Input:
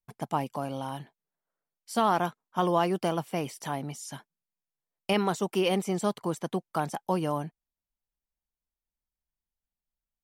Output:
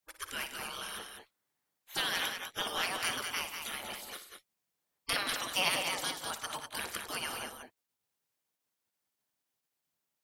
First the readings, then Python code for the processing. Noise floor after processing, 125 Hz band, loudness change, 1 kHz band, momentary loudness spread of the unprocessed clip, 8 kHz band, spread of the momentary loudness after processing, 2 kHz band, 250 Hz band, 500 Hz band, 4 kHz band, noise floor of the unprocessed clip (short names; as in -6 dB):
under -85 dBFS, -19.5 dB, -5.0 dB, -9.5 dB, 12 LU, +4.0 dB, 14 LU, +4.5 dB, -18.5 dB, -14.5 dB, +5.5 dB, under -85 dBFS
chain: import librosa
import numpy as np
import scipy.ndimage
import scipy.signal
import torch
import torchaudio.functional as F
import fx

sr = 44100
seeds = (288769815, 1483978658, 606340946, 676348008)

y = fx.spec_gate(x, sr, threshold_db=-20, keep='weak')
y = fx.echo_multitap(y, sr, ms=(58, 103, 178, 198), db=(-11.5, -16.5, -15.0, -6.5))
y = y * librosa.db_to_amplitude(8.5)